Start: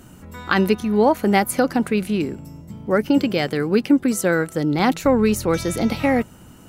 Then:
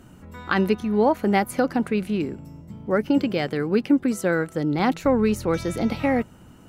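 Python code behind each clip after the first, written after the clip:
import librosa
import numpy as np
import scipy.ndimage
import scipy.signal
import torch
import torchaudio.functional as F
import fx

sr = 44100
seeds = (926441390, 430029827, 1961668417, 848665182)

y = fx.high_shelf(x, sr, hz=4900.0, db=-8.5)
y = y * 10.0 ** (-3.0 / 20.0)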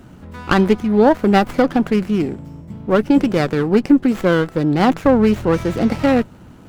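y = fx.running_max(x, sr, window=9)
y = y * 10.0 ** (6.5 / 20.0)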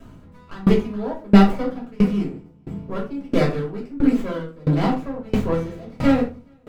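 y = fx.echo_feedback(x, sr, ms=423, feedback_pct=34, wet_db=-20)
y = fx.room_shoebox(y, sr, seeds[0], volume_m3=310.0, walls='furnished', distance_m=5.6)
y = fx.tremolo_decay(y, sr, direction='decaying', hz=1.5, depth_db=27)
y = y * 10.0 ** (-8.5 / 20.0)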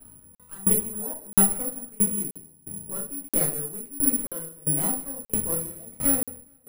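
y = x + 10.0 ** (-20.0 / 20.0) * np.pad(x, (int(158 * sr / 1000.0), 0))[:len(x)]
y = (np.kron(scipy.signal.resample_poly(y, 1, 4), np.eye(4)[0]) * 4)[:len(y)]
y = fx.buffer_crackle(y, sr, first_s=0.35, period_s=0.98, block=2048, kind='zero')
y = y * 10.0 ** (-12.0 / 20.0)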